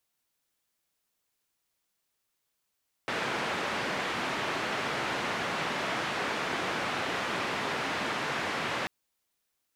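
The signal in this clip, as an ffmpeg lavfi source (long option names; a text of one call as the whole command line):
ffmpeg -f lavfi -i "anoisesrc=color=white:duration=5.79:sample_rate=44100:seed=1,highpass=frequency=140,lowpass=frequency=2000,volume=-16.9dB" out.wav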